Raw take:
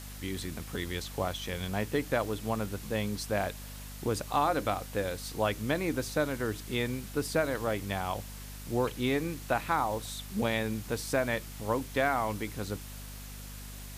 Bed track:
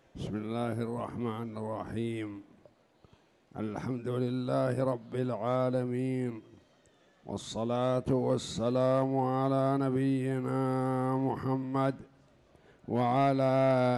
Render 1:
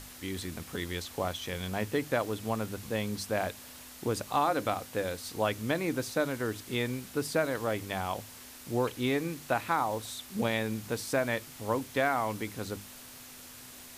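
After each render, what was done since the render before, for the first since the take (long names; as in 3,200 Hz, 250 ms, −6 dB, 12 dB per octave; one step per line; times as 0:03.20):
mains-hum notches 50/100/150/200 Hz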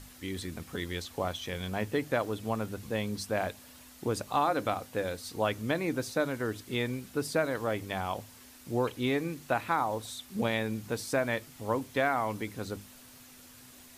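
broadband denoise 6 dB, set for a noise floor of −49 dBFS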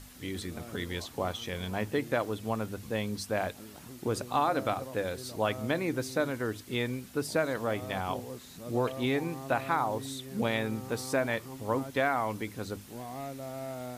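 mix in bed track −13.5 dB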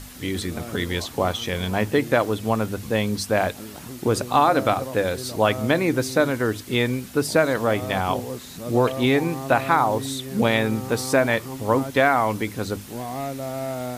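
level +10 dB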